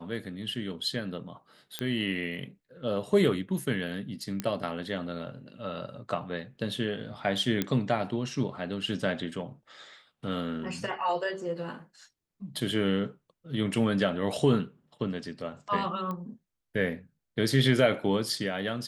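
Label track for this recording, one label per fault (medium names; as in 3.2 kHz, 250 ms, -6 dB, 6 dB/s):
1.790000	1.790000	pop -16 dBFS
4.400000	4.400000	pop -16 dBFS
7.620000	7.620000	pop -13 dBFS
16.110000	16.110000	pop -23 dBFS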